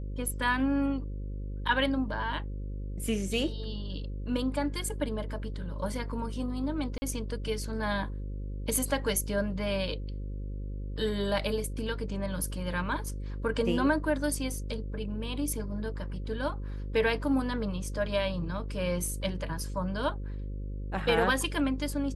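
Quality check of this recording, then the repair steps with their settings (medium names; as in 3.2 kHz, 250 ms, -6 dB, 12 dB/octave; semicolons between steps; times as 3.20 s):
buzz 50 Hz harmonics 11 -36 dBFS
6.98–7.02 s: dropout 40 ms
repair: de-hum 50 Hz, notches 11; interpolate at 6.98 s, 40 ms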